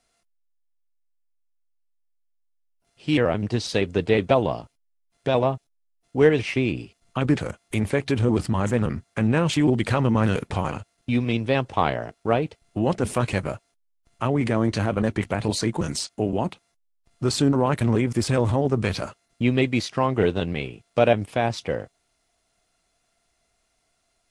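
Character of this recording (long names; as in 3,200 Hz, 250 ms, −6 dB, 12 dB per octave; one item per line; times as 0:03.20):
background noise floor −71 dBFS
spectral slope −6.0 dB per octave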